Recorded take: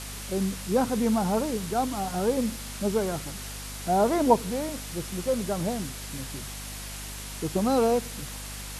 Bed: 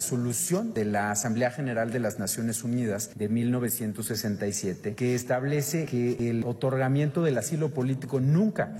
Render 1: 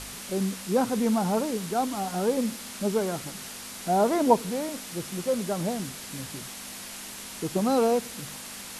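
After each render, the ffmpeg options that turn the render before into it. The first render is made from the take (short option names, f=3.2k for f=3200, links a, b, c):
-af "bandreject=f=50:t=h:w=4,bandreject=f=100:t=h:w=4,bandreject=f=150:t=h:w=4"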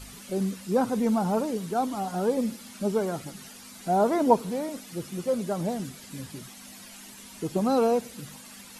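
-af "afftdn=nr=11:nf=-41"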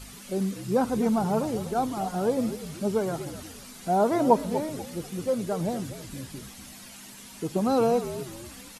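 -filter_complex "[0:a]asplit=5[a][b][c][d][e];[b]adelay=243,afreqshift=-65,volume=-12dB[f];[c]adelay=486,afreqshift=-130,volume=-21.1dB[g];[d]adelay=729,afreqshift=-195,volume=-30.2dB[h];[e]adelay=972,afreqshift=-260,volume=-39.4dB[i];[a][f][g][h][i]amix=inputs=5:normalize=0"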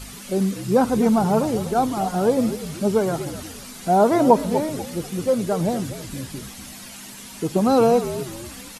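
-af "volume=6.5dB,alimiter=limit=-2dB:level=0:latency=1"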